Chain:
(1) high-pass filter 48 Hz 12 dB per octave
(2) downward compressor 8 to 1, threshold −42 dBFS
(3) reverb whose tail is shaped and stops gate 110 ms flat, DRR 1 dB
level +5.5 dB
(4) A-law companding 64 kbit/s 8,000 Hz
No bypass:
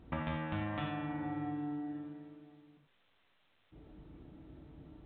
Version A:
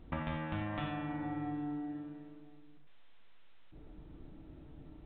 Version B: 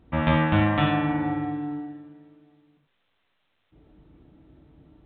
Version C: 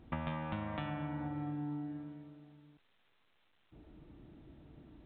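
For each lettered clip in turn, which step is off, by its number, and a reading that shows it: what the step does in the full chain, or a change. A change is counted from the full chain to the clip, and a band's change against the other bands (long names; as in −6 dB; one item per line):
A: 1, change in momentary loudness spread −1 LU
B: 2, change in crest factor +2.0 dB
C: 3, 125 Hz band +2.0 dB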